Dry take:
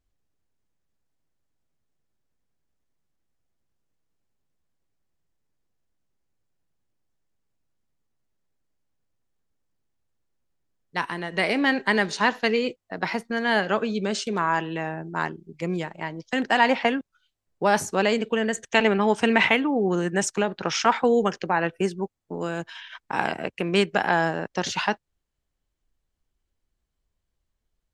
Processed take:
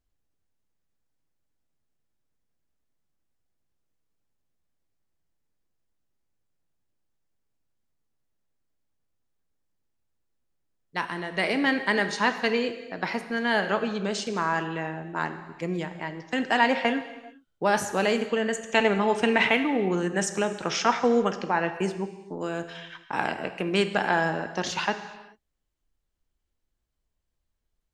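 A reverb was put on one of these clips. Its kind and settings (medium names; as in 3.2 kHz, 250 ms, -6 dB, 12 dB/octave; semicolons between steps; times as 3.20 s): gated-style reverb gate 450 ms falling, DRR 8.5 dB; trim -2.5 dB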